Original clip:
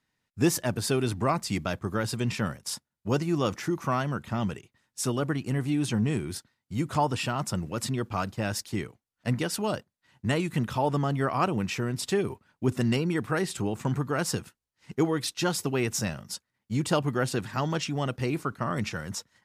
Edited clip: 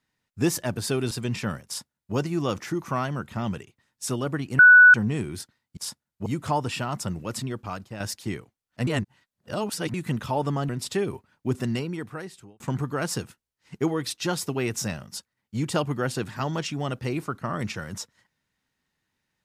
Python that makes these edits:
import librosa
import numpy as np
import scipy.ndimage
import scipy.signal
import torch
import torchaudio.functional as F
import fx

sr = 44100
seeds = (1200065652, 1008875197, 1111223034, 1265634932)

y = fx.edit(x, sr, fx.cut(start_s=1.11, length_s=0.96),
    fx.duplicate(start_s=2.62, length_s=0.49, to_s=6.73),
    fx.bleep(start_s=5.55, length_s=0.35, hz=1480.0, db=-8.0),
    fx.fade_out_to(start_s=7.73, length_s=0.74, floor_db=-8.5),
    fx.reverse_span(start_s=9.34, length_s=1.07),
    fx.cut(start_s=11.16, length_s=0.7),
    fx.fade_out_span(start_s=12.64, length_s=1.13), tone=tone)